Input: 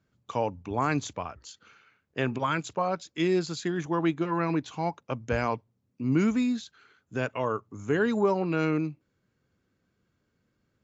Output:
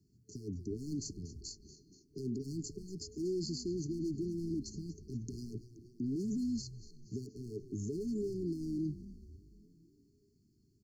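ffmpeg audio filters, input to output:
-filter_complex "[0:a]volume=16.8,asoftclip=hard,volume=0.0596,acrossover=split=240|760|4800[s0][s1][s2][s3];[s0]acompressor=threshold=0.0112:ratio=4[s4];[s1]acompressor=threshold=0.0316:ratio=4[s5];[s2]acompressor=threshold=0.0126:ratio=4[s6];[s3]acompressor=threshold=0.00251:ratio=4[s7];[s4][s5][s6][s7]amix=inputs=4:normalize=0,alimiter=level_in=2.82:limit=0.0631:level=0:latency=1:release=30,volume=0.355,asplit=2[s8][s9];[s9]asplit=6[s10][s11][s12][s13][s14][s15];[s10]adelay=238,afreqshift=-120,volume=0.178[s16];[s11]adelay=476,afreqshift=-240,volume=0.101[s17];[s12]adelay=714,afreqshift=-360,volume=0.0575[s18];[s13]adelay=952,afreqshift=-480,volume=0.0331[s19];[s14]adelay=1190,afreqshift=-600,volume=0.0188[s20];[s15]adelay=1428,afreqshift=-720,volume=0.0107[s21];[s16][s17][s18][s19][s20][s21]amix=inputs=6:normalize=0[s22];[s8][s22]amix=inputs=2:normalize=0,afftfilt=real='re*(1-between(b*sr/4096,440,4200))':imag='im*(1-between(b*sr/4096,440,4200))':win_size=4096:overlap=0.75,volume=1.5"

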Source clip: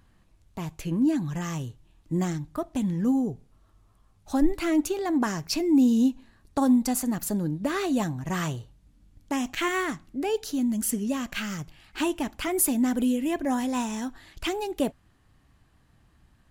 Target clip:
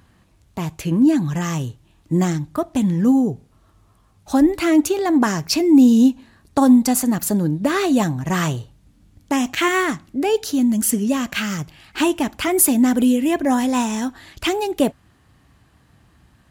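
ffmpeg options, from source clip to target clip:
-af "highpass=60,volume=2.66"

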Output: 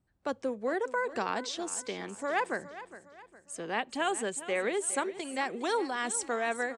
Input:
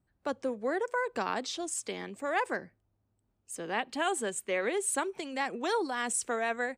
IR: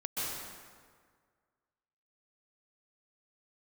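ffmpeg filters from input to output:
-filter_complex "[0:a]lowpass=f=10000:w=0.5412,lowpass=f=10000:w=1.3066,asplit=2[s0][s1];[s1]aecho=0:1:411|822|1233|1644:0.178|0.0729|0.0299|0.0123[s2];[s0][s2]amix=inputs=2:normalize=0"

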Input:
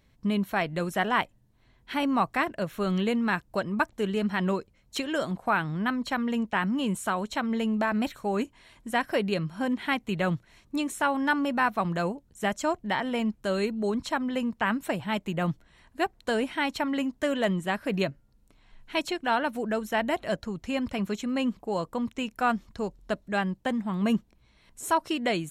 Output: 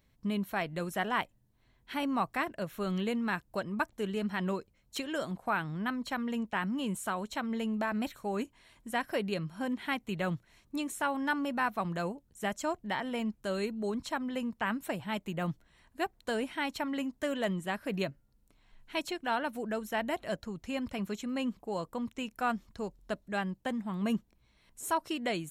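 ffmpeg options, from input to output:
-af "highshelf=f=11000:g=8,volume=0.501"

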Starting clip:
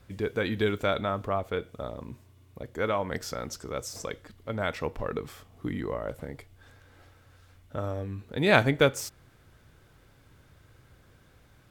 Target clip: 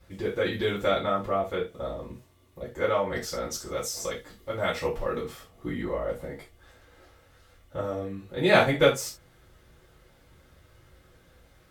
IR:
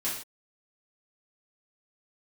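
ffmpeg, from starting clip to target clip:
-filter_complex "[0:a]asettb=1/sr,asplit=3[s0][s1][s2];[s0]atrim=end=3.514[s3];[s1]atrim=start=3.51:end=5.23,asetpts=PTS-STARTPTS,afade=t=in:d=0.004:c=qsin,afade=t=out:st=1.716:d=0.004:c=qsin,highshelf=f=4400:g=6[s4];[s2]atrim=start=5.226[s5];[s3][s4]acrossfade=d=0.004:c1=hsin:c2=qsin[s6];[s6][s5]acrossfade=d=0.004:c1=qsin:c2=hsin[s7];[1:a]atrim=start_sample=2205,asetrate=83790,aresample=44100[s8];[s7][s8]afir=irnorm=-1:irlink=0,volume=1.19"

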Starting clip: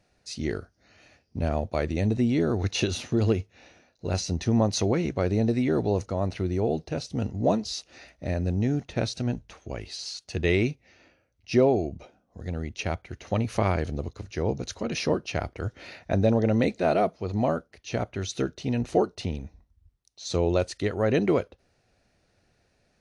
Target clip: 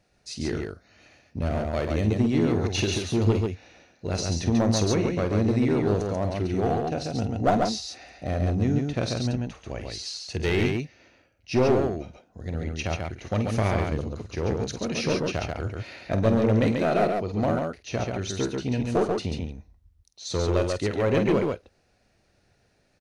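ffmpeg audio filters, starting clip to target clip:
-filter_complex "[0:a]asettb=1/sr,asplit=3[s0][s1][s2];[s0]atrim=end=6.424[s3];[s1]atrim=start=6.42:end=8.58,asetpts=PTS-STARTPTS,afade=t=in:d=0.004:c=qsin,afade=t=out:st=2.156:d=0.004:c=qsin,equalizer=f=740:w=7.7:g=11[s4];[s2]atrim=start=8.576[s5];[s3][s4]acrossfade=d=0.004:c1=hsin:c2=qsin[s6];[s6][s5]acrossfade=d=0.004:c1=qsin:c2=hsin,aeval=exprs='clip(val(0),-1,0.1)':c=same,aecho=1:1:48|112|138:0.316|0.119|0.668"

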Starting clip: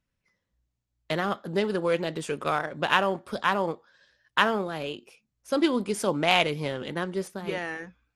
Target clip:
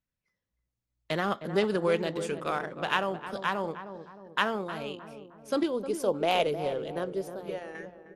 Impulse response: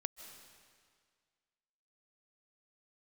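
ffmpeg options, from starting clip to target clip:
-filter_complex "[0:a]asettb=1/sr,asplit=3[s0][s1][s2];[s0]atrim=end=5.634[s3];[s1]atrim=start=5.63:end=7.75,asetpts=PTS-STARTPTS,afade=t=in:d=0.004:c=qsin,afade=t=out:st=2.116:d=0.004:c=qsin,equalizer=f=125:t=o:w=1:g=-9,equalizer=f=250:t=o:w=1:g=-8,equalizer=f=500:t=o:w=1:g=4,equalizer=f=1000:t=o:w=1:g=-6,equalizer=f=2000:t=o:w=1:g=-10,equalizer=f=4000:t=o:w=1:g=-5,equalizer=f=8000:t=o:w=1:g=-8[s4];[s2]atrim=start=7.746[s5];[s3][s4]acrossfade=d=0.004:c1=hsin:c2=qsin[s6];[s6][s5]acrossfade=d=0.004:c1=qsin:c2=hsin,dynaudnorm=f=310:g=7:m=3.76,asplit=2[s7][s8];[s8]adelay=310,lowpass=f=1000:p=1,volume=0.355,asplit=2[s9][s10];[s10]adelay=310,lowpass=f=1000:p=1,volume=0.53,asplit=2[s11][s12];[s12]adelay=310,lowpass=f=1000:p=1,volume=0.53,asplit=2[s13][s14];[s14]adelay=310,lowpass=f=1000:p=1,volume=0.53,asplit=2[s15][s16];[s16]adelay=310,lowpass=f=1000:p=1,volume=0.53,asplit=2[s17][s18];[s18]adelay=310,lowpass=f=1000:p=1,volume=0.53[s19];[s7][s9][s11][s13][s15][s17][s19]amix=inputs=7:normalize=0,volume=0.355"

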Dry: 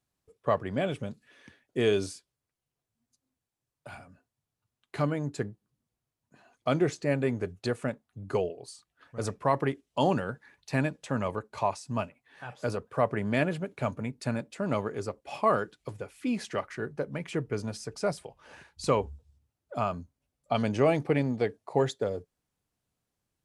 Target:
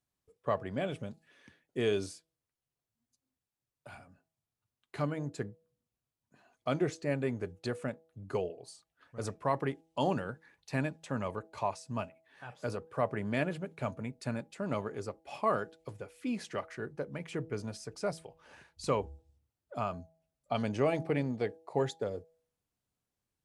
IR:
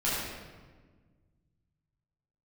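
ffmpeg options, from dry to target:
-af "bandreject=f=162.4:t=h:w=4,bandreject=f=324.8:t=h:w=4,bandreject=f=487.2:t=h:w=4,bandreject=f=649.6:t=h:w=4,bandreject=f=812:t=h:w=4,volume=0.562"

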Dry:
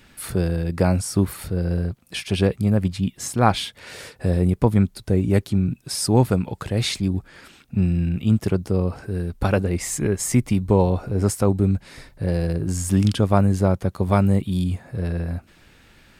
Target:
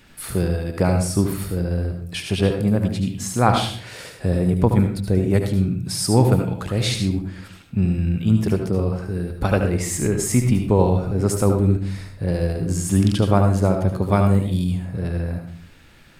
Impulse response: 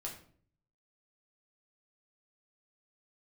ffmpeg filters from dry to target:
-filter_complex "[0:a]asplit=2[s0][s1];[1:a]atrim=start_sample=2205,highshelf=f=11000:g=5,adelay=73[s2];[s1][s2]afir=irnorm=-1:irlink=0,volume=0.668[s3];[s0][s3]amix=inputs=2:normalize=0"

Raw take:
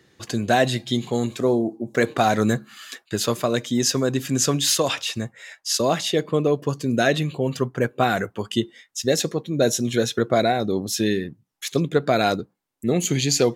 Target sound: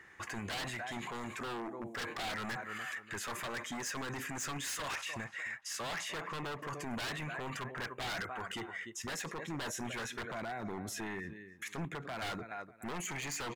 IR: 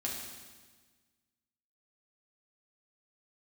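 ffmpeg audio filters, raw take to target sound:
-filter_complex "[0:a]asettb=1/sr,asplit=3[s0][s1][s2];[s0]atrim=end=10.224[s3];[s1]atrim=start=10.22:end=12.22,asetpts=PTS-STARTPTS,afade=t=in:d=0.004:c=qsin,afade=t=out:st=1.996:d=0.004:c=qsin,acrossover=split=300[s4][s5];[s5]acompressor=threshold=0.0178:ratio=2[s6];[s4][s6]amix=inputs=2:normalize=0[s7];[s2]atrim=start=12.216[s8];[s3][s7]acrossfade=d=0.004:c1=hsin:c2=qsin[s9];[s9][s8]acrossfade=d=0.004:c1=qsin:c2=hsin,highshelf=f=3900:g=-8,asplit=2[s10][s11];[s11]adelay=296,lowpass=f=3700:p=1,volume=0.1,asplit=2[s12][s13];[s13]adelay=296,lowpass=f=3700:p=1,volume=0.24[s14];[s10][s12][s14]amix=inputs=3:normalize=0,asoftclip=type=hard:threshold=0.0944,equalizer=f=125:t=o:w=1:g=-10,equalizer=f=250:t=o:w=1:g=-7,equalizer=f=500:t=o:w=1:g=-7,equalizer=f=1000:t=o:w=1:g=6,equalizer=f=2000:t=o:w=1:g=11,equalizer=f=4000:t=o:w=1:g=-11,equalizer=f=8000:t=o:w=1:g=4,aeval=exprs='0.0794*(abs(mod(val(0)/0.0794+3,4)-2)-1)':c=same,alimiter=level_in=2.82:limit=0.0631:level=0:latency=1:release=24,volume=0.355"

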